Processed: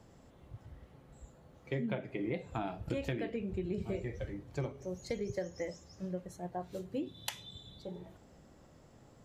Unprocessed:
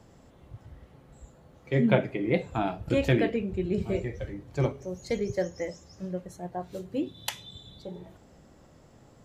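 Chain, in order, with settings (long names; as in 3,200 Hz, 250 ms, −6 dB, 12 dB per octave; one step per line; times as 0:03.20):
downward compressor 12 to 1, threshold −28 dBFS, peak gain reduction 13 dB
level −4 dB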